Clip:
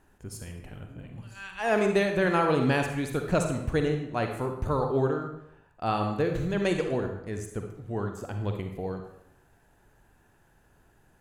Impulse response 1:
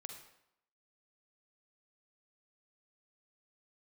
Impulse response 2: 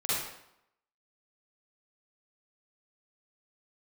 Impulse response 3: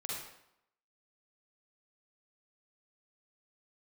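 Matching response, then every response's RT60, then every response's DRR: 1; 0.75, 0.80, 0.80 seconds; 4.0, −10.5, −5.0 decibels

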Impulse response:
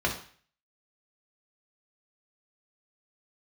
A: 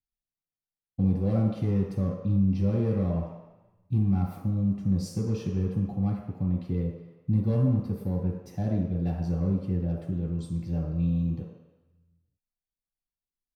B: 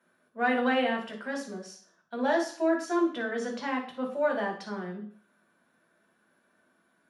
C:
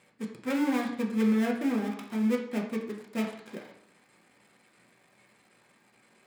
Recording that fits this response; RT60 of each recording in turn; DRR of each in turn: B; 1.0, 0.45, 0.75 seconds; −5.5, −0.5, −1.5 decibels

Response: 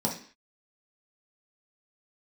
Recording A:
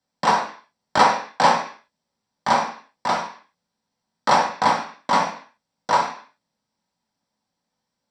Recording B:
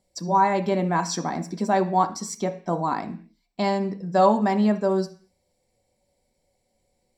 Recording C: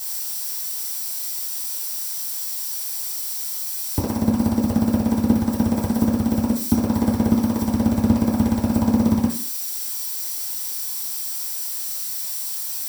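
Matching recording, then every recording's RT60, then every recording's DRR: A; 0.45, 0.45, 0.45 seconds; −3.0, 6.0, −8.0 decibels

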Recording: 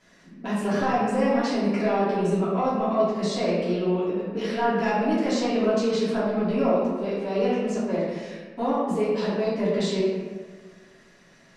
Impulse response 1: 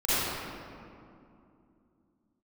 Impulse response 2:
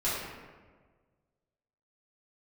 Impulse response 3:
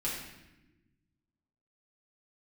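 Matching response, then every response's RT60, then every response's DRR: 2; 2.6 s, 1.5 s, non-exponential decay; −14.5, −11.0, −7.5 decibels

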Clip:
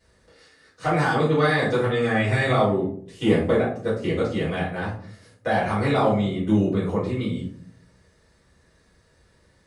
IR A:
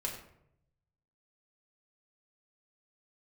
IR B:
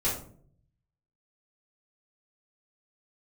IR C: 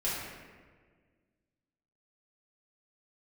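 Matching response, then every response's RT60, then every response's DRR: B; 0.75, 0.55, 1.6 seconds; −1.5, −8.5, −9.0 decibels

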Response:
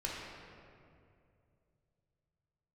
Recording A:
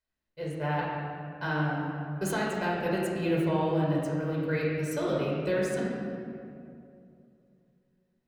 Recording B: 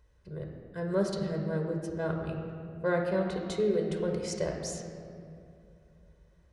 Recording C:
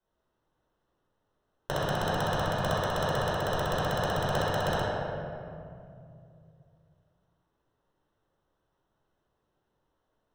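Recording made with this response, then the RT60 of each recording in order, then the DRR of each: A; 2.5, 2.5, 2.5 seconds; −4.5, 2.0, −9.0 decibels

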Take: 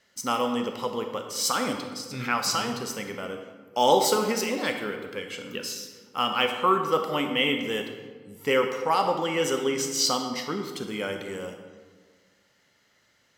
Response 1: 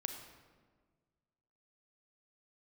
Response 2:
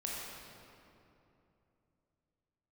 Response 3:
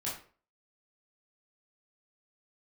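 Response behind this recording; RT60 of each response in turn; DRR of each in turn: 1; 1.6, 2.9, 0.45 seconds; 5.0, −4.5, −7.5 decibels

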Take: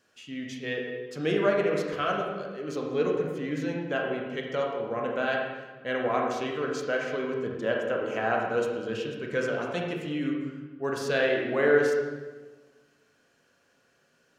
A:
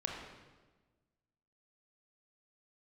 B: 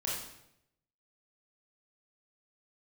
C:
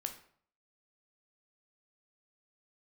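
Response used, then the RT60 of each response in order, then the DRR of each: A; 1.3, 0.80, 0.55 seconds; −0.5, −5.5, 5.5 decibels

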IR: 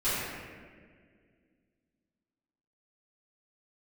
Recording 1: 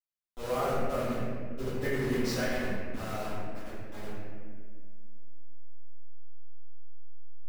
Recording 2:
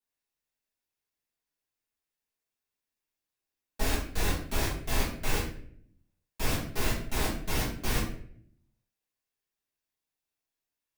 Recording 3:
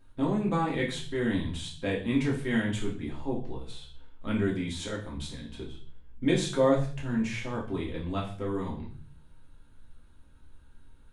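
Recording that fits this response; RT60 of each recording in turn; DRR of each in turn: 1; 1.9, 0.60, 0.45 seconds; −16.0, −9.5, −4.0 decibels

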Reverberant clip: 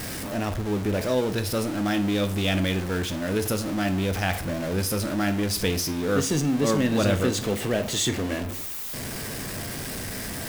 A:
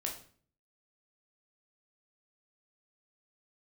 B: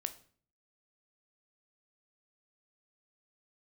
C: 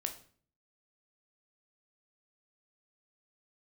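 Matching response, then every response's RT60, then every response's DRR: B; 0.45, 0.45, 0.45 seconds; −0.5, 9.0, 4.5 decibels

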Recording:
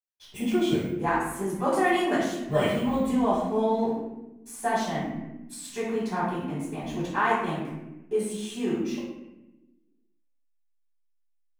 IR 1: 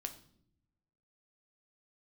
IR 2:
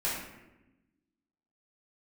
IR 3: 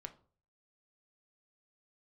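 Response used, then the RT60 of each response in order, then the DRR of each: 2; non-exponential decay, 1.0 s, 0.45 s; 6.0, −9.5, 6.0 decibels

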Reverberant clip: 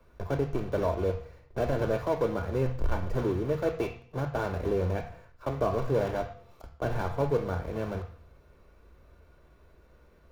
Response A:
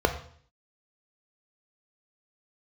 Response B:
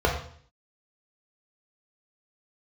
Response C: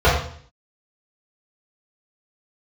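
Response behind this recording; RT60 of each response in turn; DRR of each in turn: A; 0.55, 0.55, 0.55 seconds; 6.0, −1.0, −10.0 decibels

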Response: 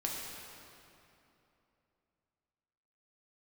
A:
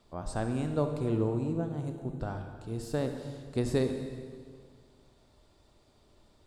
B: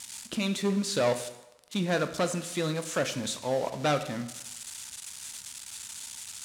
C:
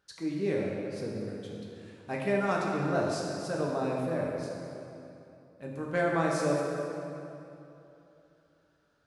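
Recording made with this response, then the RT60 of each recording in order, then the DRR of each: C; 1.9, 0.95, 3.0 seconds; 5.5, 9.0, −3.0 decibels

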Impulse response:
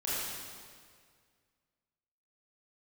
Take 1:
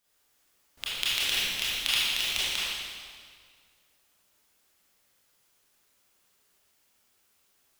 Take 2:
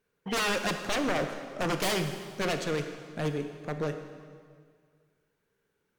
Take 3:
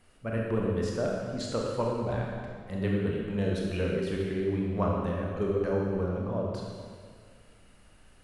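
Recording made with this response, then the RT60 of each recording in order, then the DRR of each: 1; 1.9, 1.9, 1.9 seconds; −10.0, 6.5, −2.5 decibels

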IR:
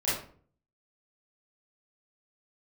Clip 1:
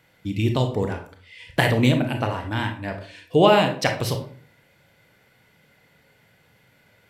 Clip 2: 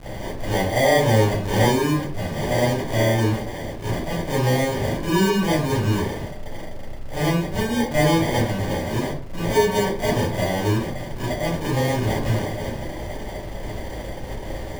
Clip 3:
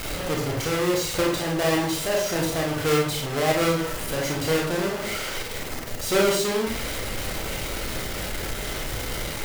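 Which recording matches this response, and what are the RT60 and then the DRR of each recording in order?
2; 0.50, 0.50, 0.50 seconds; 4.5, −11.0, −1.5 decibels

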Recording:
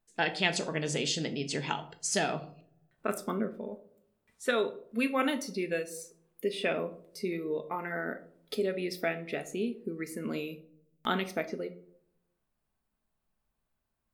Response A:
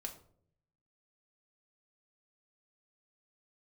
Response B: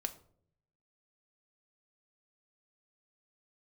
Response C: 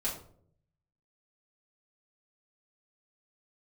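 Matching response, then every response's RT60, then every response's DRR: B; 0.60, 0.60, 0.60 seconds; 2.5, 7.5, −7.0 decibels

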